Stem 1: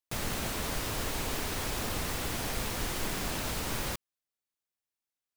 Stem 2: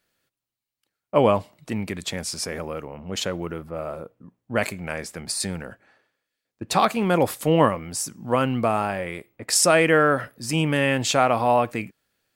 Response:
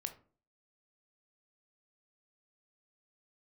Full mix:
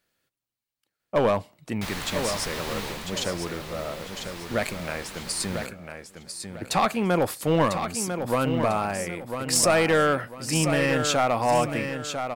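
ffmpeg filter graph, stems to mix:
-filter_complex "[0:a]equalizer=f=1000:t=o:w=1:g=6,equalizer=f=2000:t=o:w=1:g=6,equalizer=f=4000:t=o:w=1:g=7,adelay=1700,volume=0.631,afade=t=out:st=2.82:d=0.26:silence=0.446684,asplit=2[s0][s1];[s1]volume=0.0794[s2];[1:a]aeval=exprs='clip(val(0),-1,0.2)':c=same,volume=0.794,asplit=2[s3][s4];[s4]volume=0.422[s5];[s2][s5]amix=inputs=2:normalize=0,aecho=0:1:998|1996|2994|3992|4990:1|0.33|0.109|0.0359|0.0119[s6];[s0][s3][s6]amix=inputs=3:normalize=0"

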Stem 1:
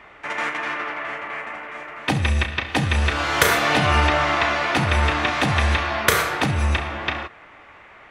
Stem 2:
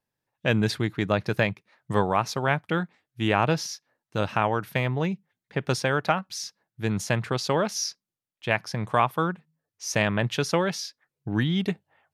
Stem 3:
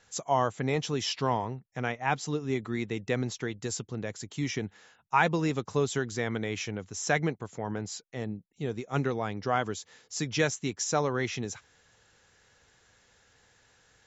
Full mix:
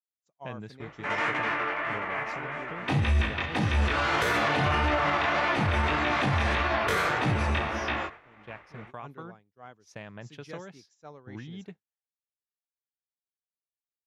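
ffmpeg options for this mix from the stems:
-filter_complex "[0:a]flanger=delay=16.5:depth=6.2:speed=1.7,adelay=800,volume=1.26[s0];[1:a]acompressor=threshold=0.0631:ratio=4,volume=0.224[s1];[2:a]adelay=100,volume=0.15[s2];[s0][s1][s2]amix=inputs=3:normalize=0,agate=range=0.0224:threshold=0.0126:ratio=3:detection=peak,aemphasis=mode=reproduction:type=50kf,alimiter=limit=0.141:level=0:latency=1:release=31"

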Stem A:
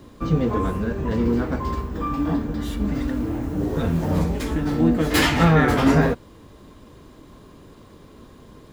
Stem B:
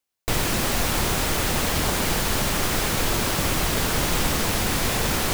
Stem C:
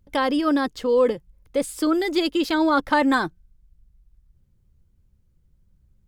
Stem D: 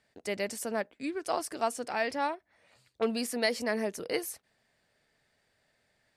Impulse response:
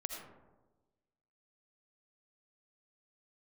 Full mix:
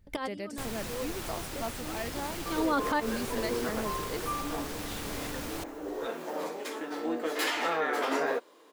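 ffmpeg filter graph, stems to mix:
-filter_complex "[0:a]highpass=f=380:w=0.5412,highpass=f=380:w=1.3066,adelay=2250,volume=0.531[s0];[1:a]alimiter=limit=0.211:level=0:latency=1:release=329,adelay=300,volume=0.2[s1];[2:a]volume=0.944[s2];[3:a]lowshelf=f=330:g=11.5,volume=0.335,asplit=2[s3][s4];[s4]apad=whole_len=268097[s5];[s2][s5]sidechaincompress=threshold=0.00112:ratio=12:attack=7.7:release=285[s6];[s0][s1][s6][s3]amix=inputs=4:normalize=0,alimiter=limit=0.106:level=0:latency=1:release=91"

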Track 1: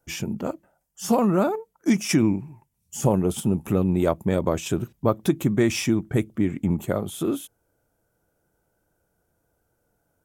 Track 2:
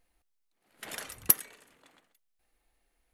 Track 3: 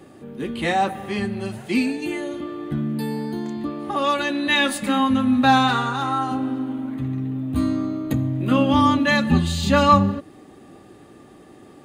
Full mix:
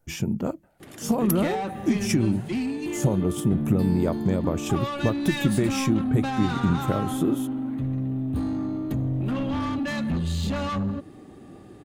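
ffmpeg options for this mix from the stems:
-filter_complex "[0:a]acompressor=threshold=0.0891:ratio=6,volume=0.75[s0];[1:a]volume=0.398[s1];[2:a]acompressor=threshold=0.0794:ratio=2,asoftclip=type=tanh:threshold=0.0668,adelay=800,volume=0.631[s2];[s0][s1][s2]amix=inputs=3:normalize=0,lowshelf=f=300:g=8.5"

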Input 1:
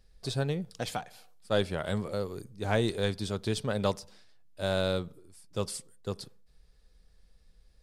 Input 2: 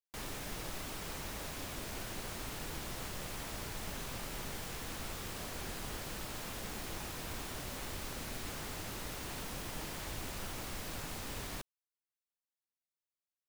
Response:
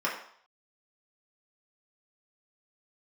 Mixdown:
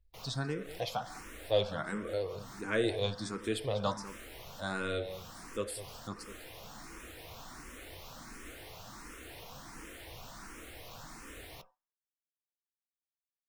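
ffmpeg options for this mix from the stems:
-filter_complex "[0:a]acontrast=80,volume=0.376,asplit=4[s0][s1][s2][s3];[s1]volume=0.2[s4];[s2]volume=0.224[s5];[1:a]volume=0.668,asplit=2[s6][s7];[s7]volume=0.168[s8];[s3]apad=whole_len=594661[s9];[s6][s9]sidechaincompress=threshold=0.00794:ratio=6:attack=7.1:release=134[s10];[2:a]atrim=start_sample=2205[s11];[s4][s8]amix=inputs=2:normalize=0[s12];[s12][s11]afir=irnorm=-1:irlink=0[s13];[s5]aecho=0:1:200:1[s14];[s0][s10][s13][s14]amix=inputs=4:normalize=0,afftdn=nr=21:nf=-58,asplit=2[s15][s16];[s16]afreqshift=1.4[s17];[s15][s17]amix=inputs=2:normalize=1"

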